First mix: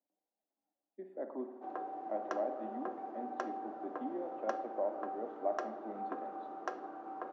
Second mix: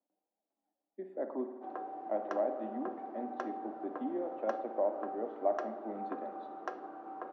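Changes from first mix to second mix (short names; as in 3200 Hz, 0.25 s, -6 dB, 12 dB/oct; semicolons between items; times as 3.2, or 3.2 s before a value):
speech +4.0 dB; background: add air absorption 80 m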